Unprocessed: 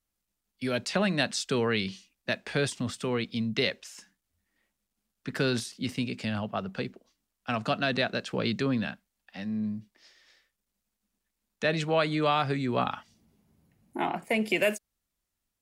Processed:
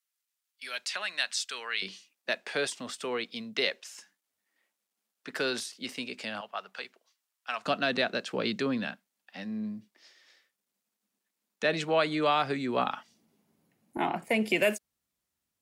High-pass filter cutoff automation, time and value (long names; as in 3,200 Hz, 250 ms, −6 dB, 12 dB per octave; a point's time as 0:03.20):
1,400 Hz
from 0:01.82 410 Hz
from 0:06.41 920 Hz
from 0:07.66 230 Hz
from 0:13.97 87 Hz